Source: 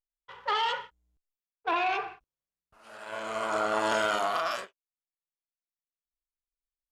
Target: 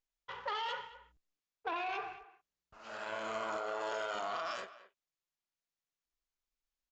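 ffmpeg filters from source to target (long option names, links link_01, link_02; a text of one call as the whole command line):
ffmpeg -i in.wav -filter_complex "[0:a]asettb=1/sr,asplit=3[link_01][link_02][link_03];[link_01]atrim=end=3.574[link_04];[link_02]atrim=start=3.57:end=4.15,asetpts=PTS-STARTPTS,afade=type=in:duration=0.004:curve=qsin,afade=type=out:start_time=0.576:duration=0.004:curve=qsin,lowshelf=frequency=330:width_type=q:width=3:gain=-7[link_05];[link_03]atrim=start=4.146[link_06];[link_04][link_05]acrossfade=duration=0.004:curve1=hsin:curve2=qsin[link_07];[link_07][link_06]acrossfade=duration=0.004:curve1=qsin:curve2=hsin,alimiter=limit=-22dB:level=0:latency=1:release=36,acompressor=threshold=-41dB:ratio=3,asplit=2[link_08][link_09];[link_09]adelay=220,highpass=300,lowpass=3400,asoftclip=type=hard:threshold=-35dB,volume=-15dB[link_10];[link_08][link_10]amix=inputs=2:normalize=0,aresample=16000,aresample=44100,volume=2.5dB" out.wav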